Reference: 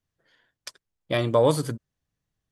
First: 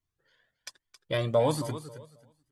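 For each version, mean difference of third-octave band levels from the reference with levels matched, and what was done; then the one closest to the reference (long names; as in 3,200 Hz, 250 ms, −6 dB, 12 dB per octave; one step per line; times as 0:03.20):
3.5 dB: on a send: repeating echo 270 ms, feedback 22%, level −13 dB
on the sum: flanger whose copies keep moving one way rising 1.2 Hz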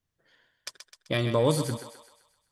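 5.0 dB: feedback echo with a high-pass in the loop 129 ms, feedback 52%, high-pass 550 Hz, level −8.5 dB
dynamic equaliser 740 Hz, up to −7 dB, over −33 dBFS, Q 0.76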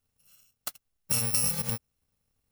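14.5 dB: samples in bit-reversed order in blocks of 128 samples
downward compressor 6 to 1, threshold −29 dBFS, peak gain reduction 13.5 dB
level +4.5 dB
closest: first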